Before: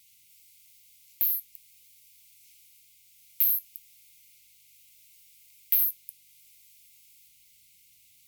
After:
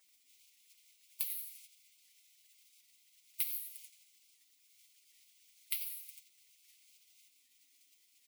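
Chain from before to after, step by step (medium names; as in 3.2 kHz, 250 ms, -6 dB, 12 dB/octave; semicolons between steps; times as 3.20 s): steep high-pass 250 Hz 96 dB/octave; peaking EQ 360 Hz -9.5 dB 0.56 oct; comb 6.8 ms, depth 80%; feedback delay 87 ms, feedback 29%, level -5.5 dB; compression 2:1, threshold -31 dBFS, peak gain reduction 9 dB; transient shaper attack +6 dB, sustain 0 dB; spectral gate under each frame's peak -15 dB weak; warped record 78 rpm, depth 100 cents; trim +1 dB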